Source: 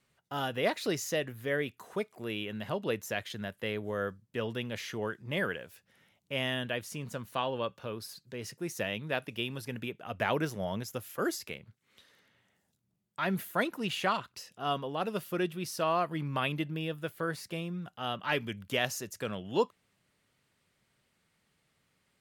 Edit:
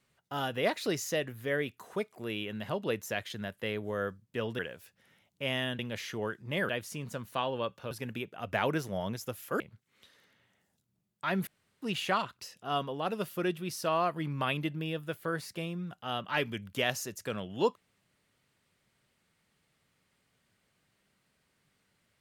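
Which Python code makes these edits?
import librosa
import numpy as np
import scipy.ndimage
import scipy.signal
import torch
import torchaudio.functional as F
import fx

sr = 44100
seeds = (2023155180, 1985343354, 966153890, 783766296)

y = fx.edit(x, sr, fx.move(start_s=4.59, length_s=0.9, to_s=6.69),
    fx.cut(start_s=7.91, length_s=1.67),
    fx.cut(start_s=11.27, length_s=0.28),
    fx.room_tone_fill(start_s=13.42, length_s=0.35), tone=tone)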